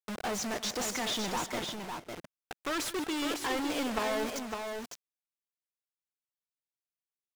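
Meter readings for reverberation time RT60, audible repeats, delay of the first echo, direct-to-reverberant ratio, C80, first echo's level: none, 4, 0.152 s, none, none, -15.5 dB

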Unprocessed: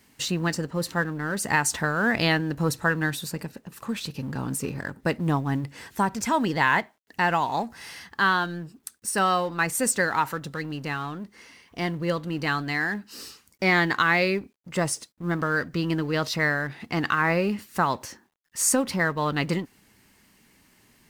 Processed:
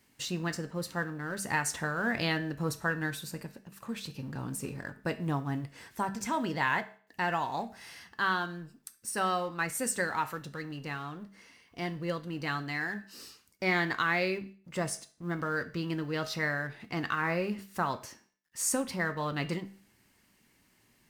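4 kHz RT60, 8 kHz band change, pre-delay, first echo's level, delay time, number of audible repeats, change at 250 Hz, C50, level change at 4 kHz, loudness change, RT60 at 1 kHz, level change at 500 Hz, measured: 0.45 s, -7.5 dB, 5 ms, none, none, none, -7.5 dB, 15.0 dB, -7.5 dB, -7.5 dB, 0.45 s, -7.0 dB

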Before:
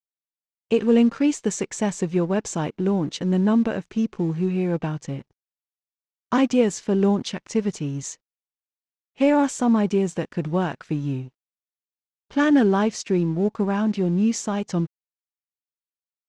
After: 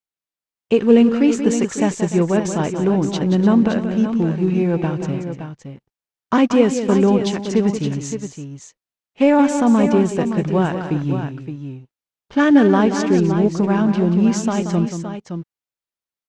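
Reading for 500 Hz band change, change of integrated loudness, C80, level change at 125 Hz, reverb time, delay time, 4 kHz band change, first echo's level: +5.5 dB, +5.5 dB, none, +5.5 dB, none, 0.181 s, +4.0 dB, -9.0 dB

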